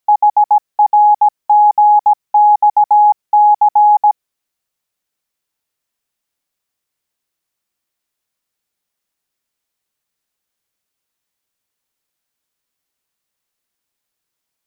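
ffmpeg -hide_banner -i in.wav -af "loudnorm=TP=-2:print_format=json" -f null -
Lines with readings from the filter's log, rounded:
"input_i" : "-11.0",
"input_tp" : "-4.9",
"input_lra" : "14.1",
"input_thresh" : "-21.1",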